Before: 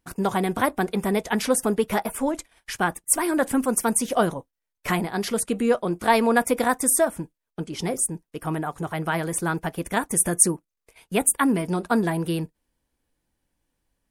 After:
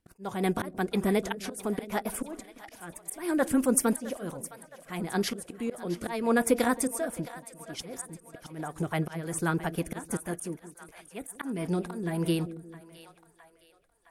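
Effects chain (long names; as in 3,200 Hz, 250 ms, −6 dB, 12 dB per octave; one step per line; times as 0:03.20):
volume swells 330 ms
echo with a time of its own for lows and highs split 570 Hz, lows 175 ms, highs 664 ms, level −14.5 dB
rotating-speaker cabinet horn 6 Hz, later 1 Hz, at 0:11.41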